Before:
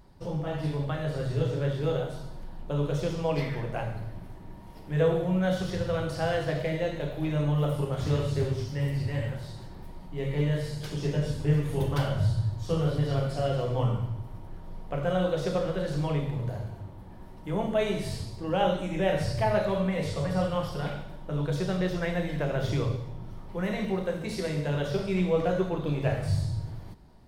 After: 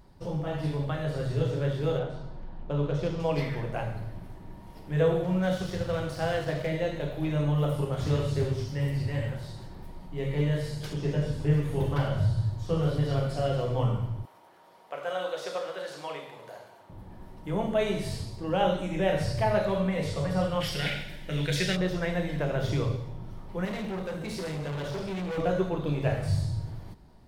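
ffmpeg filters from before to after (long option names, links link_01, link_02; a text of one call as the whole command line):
ffmpeg -i in.wav -filter_complex "[0:a]asettb=1/sr,asplit=3[link_01][link_02][link_03];[link_01]atrim=end=1.984[link_04];[link_02]atrim=start=1.98:end=3.2,asetpts=PTS-STARTPTS,afade=type=in:duration=0.004:curve=qsin,afade=type=out:start_time=1.216:duration=0.004:curve=qsin,adynamicsmooth=sensitivity=7:basefreq=3700[link_05];[link_03]atrim=start=3.196[link_06];[link_04][link_05]acrossfade=duration=0.004:curve1=hsin:curve2=qsin[link_07];[link_07][link_06]acrossfade=duration=0.004:curve1=qsin:curve2=hsin,asettb=1/sr,asplit=3[link_08][link_09][link_10];[link_08]atrim=end=5.244[link_11];[link_09]atrim=start=5.24:end=6.67,asetpts=PTS-STARTPTS,afade=type=in:duration=0.004:curve=qsin,afade=type=out:start_time=1.426:duration=0.004:curve=qsin,aeval=exprs='sgn(val(0))*max(abs(val(0))-0.00631,0)':channel_layout=same[link_12];[link_10]atrim=start=6.666[link_13];[link_11][link_12]acrossfade=duration=0.004:curve1=hsin:curve2=qsin[link_14];[link_14][link_13]acrossfade=duration=0.004:curve1=qsin:curve2=hsin,asettb=1/sr,asplit=3[link_15][link_16][link_17];[link_15]atrim=end=10.934[link_18];[link_16]atrim=start=10.93:end=12.83,asetpts=PTS-STARTPTS,afade=type=in:duration=0.004:curve=qsin,afade=type=out:start_time=1.896:duration=0.004:curve=qsin,acrossover=split=3000[link_19][link_20];[link_20]acompressor=threshold=-51dB:ratio=4:attack=1:release=60[link_21];[link_19][link_21]amix=inputs=2:normalize=0[link_22];[link_17]atrim=start=12.826[link_23];[link_18][link_22]acrossfade=duration=0.004:curve1=hsin:curve2=qsin[link_24];[link_24][link_23]acrossfade=duration=0.004:curve1=qsin:curve2=hsin,asettb=1/sr,asplit=3[link_25][link_26][link_27];[link_25]atrim=end=14.254[link_28];[link_26]atrim=start=14.25:end=16.9,asetpts=PTS-STARTPTS,afade=type=in:duration=0.004:curve=qsin,afade=type=out:start_time=2.646:duration=0.004:curve=qsin,highpass=620[link_29];[link_27]atrim=start=16.896[link_30];[link_28][link_29]acrossfade=duration=0.004:curve1=hsin:curve2=qsin[link_31];[link_31][link_30]acrossfade=duration=0.004:curve1=qsin:curve2=hsin,asplit=3[link_32][link_33][link_34];[link_32]afade=type=out:start_time=20.6:duration=0.02[link_35];[link_33]highshelf=frequency=1500:width_type=q:width=3:gain=10,afade=type=in:start_time=20.6:duration=0.02,afade=type=out:start_time=21.75:duration=0.02[link_36];[link_34]afade=type=in:start_time=21.75:duration=0.02[link_37];[link_35][link_36][link_37]amix=inputs=3:normalize=0,asettb=1/sr,asplit=3[link_38][link_39][link_40];[link_38]atrim=end=23.654[link_41];[link_39]atrim=start=23.65:end=25.38,asetpts=PTS-STARTPTS,afade=type=in:duration=0.004:curve=qsin,afade=type=out:start_time=1.726:duration=0.004:curve=qsin,asoftclip=type=hard:threshold=-31dB[link_42];[link_40]atrim=start=25.376[link_43];[link_41][link_42]acrossfade=duration=0.004:curve1=hsin:curve2=qsin[link_44];[link_44][link_43]acrossfade=duration=0.004:curve1=qsin:curve2=hsin" out.wav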